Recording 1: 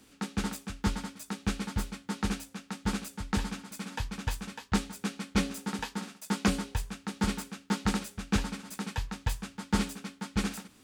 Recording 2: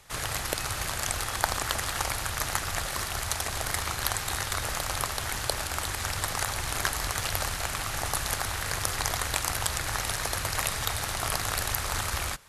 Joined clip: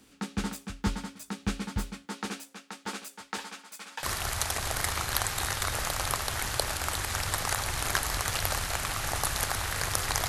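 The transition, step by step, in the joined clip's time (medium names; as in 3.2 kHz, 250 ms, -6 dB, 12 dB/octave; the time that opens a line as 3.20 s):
recording 1
2.05–4.03 s: high-pass 260 Hz -> 680 Hz
4.03 s: go over to recording 2 from 2.93 s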